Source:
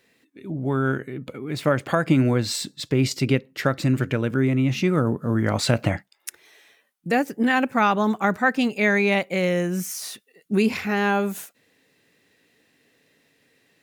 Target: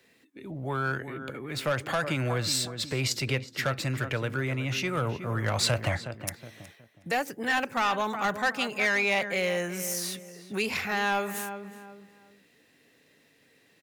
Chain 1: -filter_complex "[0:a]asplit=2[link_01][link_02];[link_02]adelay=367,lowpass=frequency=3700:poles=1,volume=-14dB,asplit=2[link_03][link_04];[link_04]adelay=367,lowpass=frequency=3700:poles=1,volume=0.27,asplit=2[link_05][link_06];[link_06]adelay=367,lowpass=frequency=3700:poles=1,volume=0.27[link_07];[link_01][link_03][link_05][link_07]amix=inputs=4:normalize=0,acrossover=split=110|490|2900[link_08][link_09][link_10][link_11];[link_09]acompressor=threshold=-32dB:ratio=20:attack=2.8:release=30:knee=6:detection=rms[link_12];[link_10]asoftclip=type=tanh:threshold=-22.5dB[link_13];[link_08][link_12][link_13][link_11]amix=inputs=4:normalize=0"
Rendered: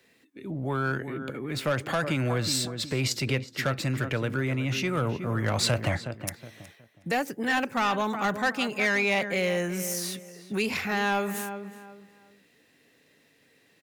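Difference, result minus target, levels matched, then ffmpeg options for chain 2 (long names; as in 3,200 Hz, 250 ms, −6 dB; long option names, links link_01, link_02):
downward compressor: peak gain reduction −8 dB
-filter_complex "[0:a]asplit=2[link_01][link_02];[link_02]adelay=367,lowpass=frequency=3700:poles=1,volume=-14dB,asplit=2[link_03][link_04];[link_04]adelay=367,lowpass=frequency=3700:poles=1,volume=0.27,asplit=2[link_05][link_06];[link_06]adelay=367,lowpass=frequency=3700:poles=1,volume=0.27[link_07];[link_01][link_03][link_05][link_07]amix=inputs=4:normalize=0,acrossover=split=110|490|2900[link_08][link_09][link_10][link_11];[link_09]acompressor=threshold=-40.5dB:ratio=20:attack=2.8:release=30:knee=6:detection=rms[link_12];[link_10]asoftclip=type=tanh:threshold=-22.5dB[link_13];[link_08][link_12][link_13][link_11]amix=inputs=4:normalize=0"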